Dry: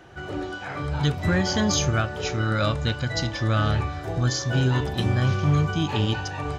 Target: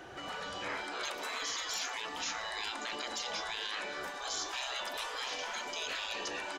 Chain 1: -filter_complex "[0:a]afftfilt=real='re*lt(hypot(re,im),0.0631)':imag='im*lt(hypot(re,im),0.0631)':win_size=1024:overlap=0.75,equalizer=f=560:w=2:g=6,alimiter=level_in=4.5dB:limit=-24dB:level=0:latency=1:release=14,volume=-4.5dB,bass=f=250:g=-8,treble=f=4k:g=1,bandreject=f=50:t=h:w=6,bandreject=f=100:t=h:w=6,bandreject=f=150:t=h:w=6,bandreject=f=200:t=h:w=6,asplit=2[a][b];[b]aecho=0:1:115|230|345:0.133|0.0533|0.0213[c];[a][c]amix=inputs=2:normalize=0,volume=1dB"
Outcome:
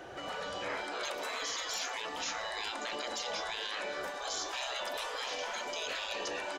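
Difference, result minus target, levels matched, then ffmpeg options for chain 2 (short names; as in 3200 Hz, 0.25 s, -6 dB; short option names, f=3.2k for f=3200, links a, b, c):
500 Hz band +4.0 dB
-filter_complex "[0:a]afftfilt=real='re*lt(hypot(re,im),0.0631)':imag='im*lt(hypot(re,im),0.0631)':win_size=1024:overlap=0.75,alimiter=level_in=4.5dB:limit=-24dB:level=0:latency=1:release=14,volume=-4.5dB,bass=f=250:g=-8,treble=f=4k:g=1,bandreject=f=50:t=h:w=6,bandreject=f=100:t=h:w=6,bandreject=f=150:t=h:w=6,bandreject=f=200:t=h:w=6,asplit=2[a][b];[b]aecho=0:1:115|230|345:0.133|0.0533|0.0213[c];[a][c]amix=inputs=2:normalize=0,volume=1dB"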